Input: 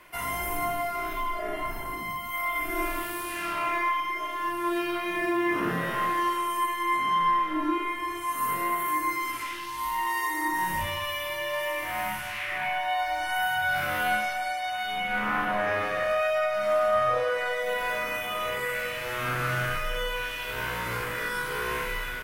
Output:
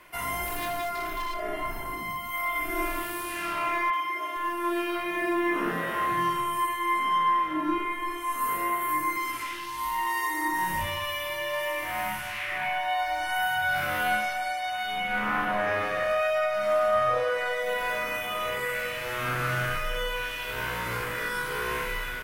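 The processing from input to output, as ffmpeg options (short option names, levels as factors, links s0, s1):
-filter_complex "[0:a]asettb=1/sr,asplit=3[s0][s1][s2];[s0]atrim=end=0.454[s3];[s1]atrim=start=0.45:end=1.4,asetpts=PTS-STARTPTS,afade=t=in:d=0.004:c=qsin,afade=t=out:st=0.946:d=0.004:c=qsin,aeval=exprs='0.0501*(abs(mod(val(0)/0.0501+3,4)-2)-1)':c=same[s4];[s2]atrim=start=1.396[s5];[s3][s4]acrossfade=d=0.004:c1=hsin:c2=qsin[s6];[s6][s5]acrossfade=d=0.004:c1=qsin:c2=hsin,asettb=1/sr,asplit=3[s7][s8][s9];[s7]atrim=end=3.904[s10];[s8]atrim=start=3.9:end=9.17,asetpts=PTS-STARTPTS,afade=t=in:d=0.004:c=qsin,afade=t=out:st=5.266:d=0.004:c=qsin,acrossover=split=160|5000[s11][s12][s13];[s13]adelay=30[s14];[s11]adelay=460[s15];[s15][s12][s14]amix=inputs=3:normalize=0,atrim=end_sample=232407[s16];[s9]atrim=start=9.166[s17];[s10][s16]acrossfade=d=0.004:c1=hsin:c2=qsin[s18];[s18][s17]acrossfade=d=0.004:c1=qsin:c2=hsin"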